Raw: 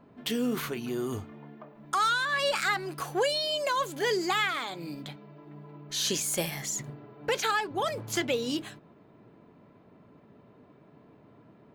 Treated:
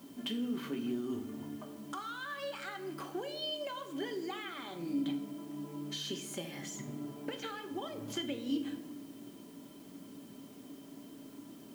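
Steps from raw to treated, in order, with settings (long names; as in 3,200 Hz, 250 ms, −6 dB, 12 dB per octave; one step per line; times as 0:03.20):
high-pass filter 67 Hz 24 dB per octave
high-shelf EQ 5,000 Hz −9.5 dB
mains-hum notches 50/100/150/200/250/300/350/400/450 Hz
downward compressor 6 to 1, threshold −39 dBFS, peak gain reduction 15 dB
bit-depth reduction 10 bits, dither triangular
hollow resonant body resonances 280/3,100 Hz, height 17 dB, ringing for 70 ms
convolution reverb RT60 1.1 s, pre-delay 5 ms, DRR 5 dB
level −3.5 dB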